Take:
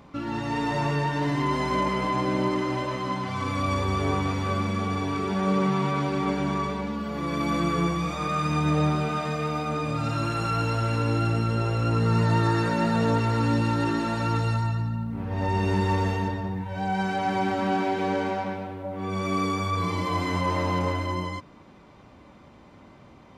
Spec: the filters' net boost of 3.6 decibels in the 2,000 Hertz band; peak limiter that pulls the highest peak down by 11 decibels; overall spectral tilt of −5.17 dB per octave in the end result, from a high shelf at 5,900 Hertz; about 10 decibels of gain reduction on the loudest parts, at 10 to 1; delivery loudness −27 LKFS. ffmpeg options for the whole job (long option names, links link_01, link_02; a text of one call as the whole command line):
ffmpeg -i in.wav -af "equalizer=frequency=2000:width_type=o:gain=4,highshelf=frequency=5900:gain=3.5,acompressor=threshold=-29dB:ratio=10,volume=12.5dB,alimiter=limit=-19dB:level=0:latency=1" out.wav